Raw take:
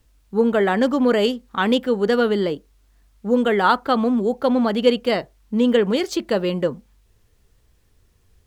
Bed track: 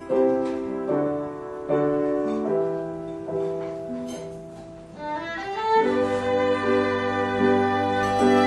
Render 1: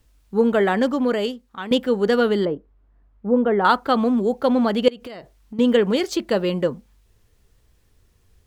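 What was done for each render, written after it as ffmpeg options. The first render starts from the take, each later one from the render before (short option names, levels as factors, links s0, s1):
-filter_complex "[0:a]asettb=1/sr,asplit=3[s0][s1][s2];[s0]atrim=end=2.454[s3];[s1]atrim=start=2.45:end=3.65,asetpts=PTS-STARTPTS,afade=t=in:d=0.004:c=qsin,afade=t=out:st=1.196:d=0.004:c=qsin,lowpass=1200[s4];[s2]atrim=start=3.646[s5];[s3][s4]acrossfade=d=0.004:c1=hsin:c2=qsin[s6];[s6][s5]acrossfade=d=0.004:c1=qsin:c2=hsin,asettb=1/sr,asplit=3[s7][s8][s9];[s7]atrim=end=4.884[s10];[s8]atrim=start=4.88:end=5.59,asetpts=PTS-STARTPTS,afade=t=in:d=0.004:c=qsin,afade=t=out:st=0.706:d=0.004:c=qsin,acompressor=threshold=0.0282:ratio=20:attack=3.2:release=140:knee=1:detection=peak[s11];[s9]atrim=start=5.586[s12];[s10][s11]acrossfade=d=0.004:c1=hsin:c2=qsin[s13];[s13][s12]acrossfade=d=0.004:c1=qsin:c2=hsin,asplit=2[s14][s15];[s14]atrim=end=1.71,asetpts=PTS-STARTPTS,afade=t=out:st=0.63:d=1.08:silence=0.211349[s16];[s15]atrim=start=1.71,asetpts=PTS-STARTPTS,afade=t=in:d=0.004:c=hsin:silence=0.211349[s17];[s16][s17]concat=n=2:v=0:a=1"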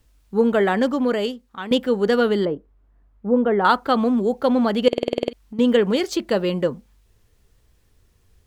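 -filter_complex "[0:a]asplit=10[s0][s1][s2][s3][s4][s5][s6][s7][s8][s9];[s0]atrim=end=4.932[s10];[s1]atrim=start=4.878:end=4.932[s11];[s2]atrim=start=4.878:end=4.932[s12];[s3]atrim=start=4.878:end=4.932[s13];[s4]atrim=start=4.878:end=4.932[s14];[s5]atrim=start=4.878:end=4.932[s15];[s6]atrim=start=4.878:end=4.932[s16];[s7]atrim=start=4.878:end=4.932[s17];[s8]atrim=start=4.878:end=4.932[s18];[s9]atrim=start=5.328[s19];[s10][s11]acrossfade=d=0.004:c1=hsin:c2=hsin[s20];[s20][s12]acrossfade=d=0.004:c1=hsin:c2=hsin[s21];[s21][s13]acrossfade=d=0.004:c1=hsin:c2=hsin[s22];[s22][s14]acrossfade=d=0.004:c1=hsin:c2=hsin[s23];[s23][s15]acrossfade=d=0.004:c1=hsin:c2=hsin[s24];[s24][s16]acrossfade=d=0.004:c1=hsin:c2=hsin[s25];[s25][s17]acrossfade=d=0.004:c1=hsin:c2=hsin[s26];[s26][s18]acrossfade=d=0.004:c1=hsin:c2=hsin[s27];[s27][s19]acrossfade=d=0.004:c1=hsin:c2=hsin"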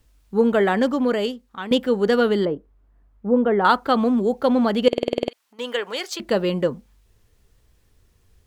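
-filter_complex "[0:a]asettb=1/sr,asplit=3[s0][s1][s2];[s0]atrim=end=5.284[s3];[s1]atrim=start=5.28:end=6.2,asetpts=PTS-STARTPTS,afade=t=in:d=0.004:c=qsin,afade=t=out:st=0.916:d=0.004:c=qsin,highpass=770[s4];[s2]atrim=start=6.196[s5];[s3][s4]acrossfade=d=0.004:c1=hsin:c2=qsin[s6];[s6][s5]acrossfade=d=0.004:c1=qsin:c2=hsin"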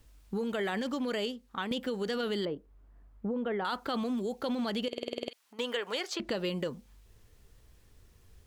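-filter_complex "[0:a]alimiter=limit=0.2:level=0:latency=1:release=14,acrossover=split=2300|7400[s0][s1][s2];[s0]acompressor=threshold=0.0224:ratio=4[s3];[s1]acompressor=threshold=0.0126:ratio=4[s4];[s2]acompressor=threshold=0.00112:ratio=4[s5];[s3][s4][s5]amix=inputs=3:normalize=0"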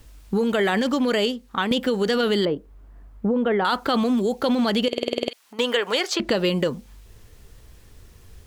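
-af "volume=3.76"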